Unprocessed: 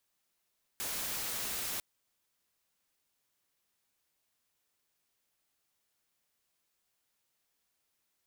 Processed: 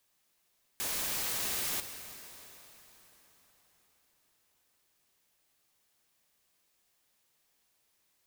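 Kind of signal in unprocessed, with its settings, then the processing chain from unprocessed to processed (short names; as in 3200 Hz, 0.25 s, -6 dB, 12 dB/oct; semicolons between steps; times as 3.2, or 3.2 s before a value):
noise white, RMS -37 dBFS 1.00 s
in parallel at -2 dB: limiter -35 dBFS; on the sum: notch 1400 Hz, Q 18; plate-style reverb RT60 4.7 s, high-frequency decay 0.85×, DRR 7.5 dB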